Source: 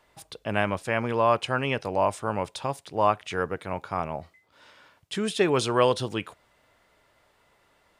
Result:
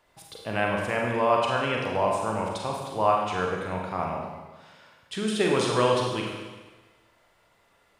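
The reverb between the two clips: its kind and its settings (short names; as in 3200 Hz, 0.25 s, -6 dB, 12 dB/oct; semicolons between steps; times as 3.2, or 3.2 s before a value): Schroeder reverb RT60 1.3 s, combs from 33 ms, DRR -1 dB; gain -3 dB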